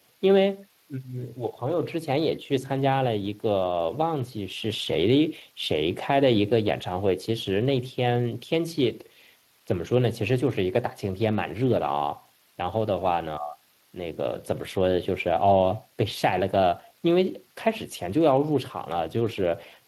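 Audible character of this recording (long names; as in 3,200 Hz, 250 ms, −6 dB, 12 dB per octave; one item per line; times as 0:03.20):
a quantiser's noise floor 10 bits, dither triangular
Speex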